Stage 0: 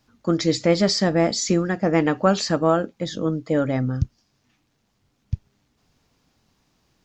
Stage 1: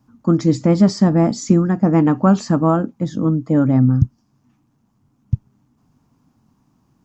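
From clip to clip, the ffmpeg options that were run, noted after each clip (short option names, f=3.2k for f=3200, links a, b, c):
-af "equalizer=f=125:t=o:w=1:g=9,equalizer=f=250:t=o:w=1:g=11,equalizer=f=500:t=o:w=1:g=-5,equalizer=f=1k:t=o:w=1:g=8,equalizer=f=2k:t=o:w=1:g=-6,equalizer=f=4k:t=o:w=1:g=-9,volume=-1dB"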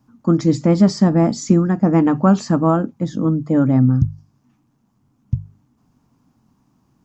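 -af "bandreject=f=50:t=h:w=6,bandreject=f=100:t=h:w=6,bandreject=f=150:t=h:w=6"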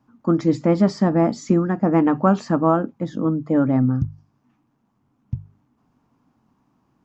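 -af "bass=f=250:g=-7,treble=f=4k:g=-11"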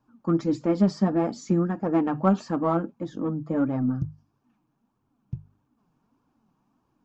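-filter_complex "[0:a]bandreject=f=2k:w=7.8,asplit=2[a][b];[b]asoftclip=type=tanh:threshold=-18dB,volume=-9dB[c];[a][c]amix=inputs=2:normalize=0,flanger=delay=1.8:depth=4.9:regen=33:speed=1.6:shape=triangular,volume=-4dB"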